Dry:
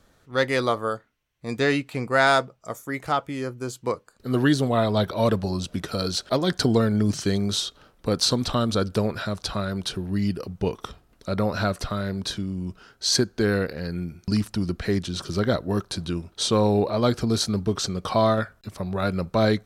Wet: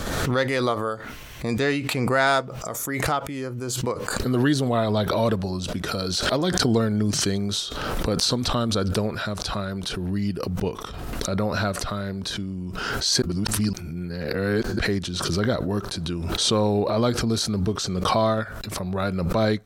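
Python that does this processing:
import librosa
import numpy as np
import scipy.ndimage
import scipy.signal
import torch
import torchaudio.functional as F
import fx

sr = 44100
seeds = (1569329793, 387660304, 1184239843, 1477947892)

y = fx.edit(x, sr, fx.reverse_span(start_s=13.22, length_s=1.57), tone=tone)
y = fx.pre_swell(y, sr, db_per_s=27.0)
y = F.gain(torch.from_numpy(y), -1.5).numpy()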